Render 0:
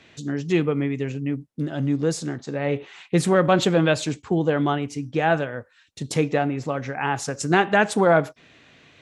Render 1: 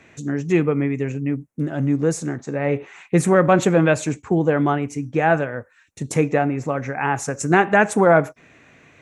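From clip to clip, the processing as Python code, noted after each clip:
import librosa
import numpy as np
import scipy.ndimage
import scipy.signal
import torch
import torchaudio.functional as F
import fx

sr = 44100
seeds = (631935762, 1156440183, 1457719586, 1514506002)

y = fx.band_shelf(x, sr, hz=3900.0, db=-10.5, octaves=1.0)
y = y * librosa.db_to_amplitude(3.0)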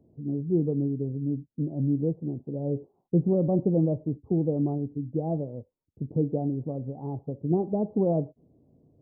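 y = scipy.ndimage.gaussian_filter1d(x, 17.0, mode='constant')
y = y * librosa.db_to_amplitude(-4.0)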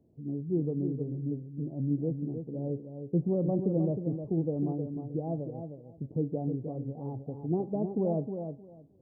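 y = fx.echo_feedback(x, sr, ms=310, feedback_pct=17, wet_db=-7.5)
y = y * librosa.db_to_amplitude(-5.0)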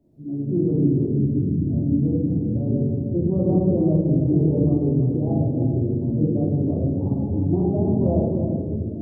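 y = fx.echo_pitch(x, sr, ms=116, semitones=-4, count=3, db_per_echo=-3.0)
y = fx.room_shoebox(y, sr, seeds[0], volume_m3=530.0, walls='mixed', distance_m=2.7)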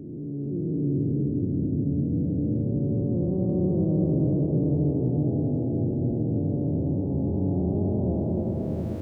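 y = fx.spec_blur(x, sr, span_ms=974.0)
y = y + 10.0 ** (-5.5 / 20.0) * np.pad(y, (int(442 * sr / 1000.0), 0))[:len(y)]
y = y * librosa.db_to_amplitude(-3.5)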